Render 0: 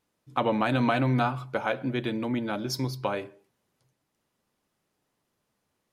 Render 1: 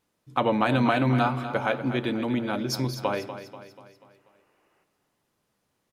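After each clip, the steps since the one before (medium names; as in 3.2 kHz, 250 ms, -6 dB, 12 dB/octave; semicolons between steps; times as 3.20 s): time-frequency box 3.94–4.83 s, 280–3000 Hz +11 dB; feedback delay 243 ms, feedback 50%, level -11.5 dB; trim +2 dB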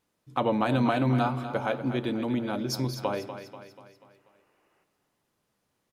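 dynamic bell 2 kHz, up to -5 dB, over -40 dBFS, Q 0.87; trim -1.5 dB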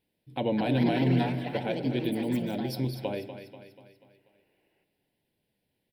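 ever faster or slower copies 303 ms, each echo +5 st, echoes 3, each echo -6 dB; static phaser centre 2.9 kHz, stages 4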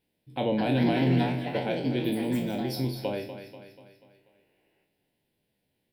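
spectral sustain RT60 0.40 s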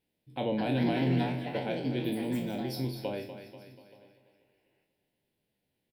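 delay 876 ms -23.5 dB; trim -4 dB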